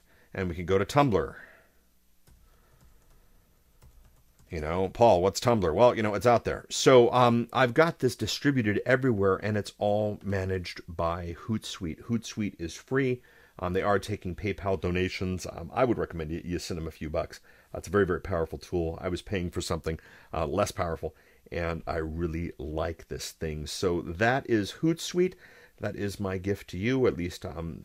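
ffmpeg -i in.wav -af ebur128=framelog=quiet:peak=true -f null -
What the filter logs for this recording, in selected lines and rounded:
Integrated loudness:
  I:         -28.3 LUFS
  Threshold: -39.0 LUFS
Loudness range:
  LRA:         9.2 LU
  Threshold: -48.9 LUFS
  LRA low:   -32.9 LUFS
  LRA high:  -23.6 LUFS
True peak:
  Peak:       -6.7 dBFS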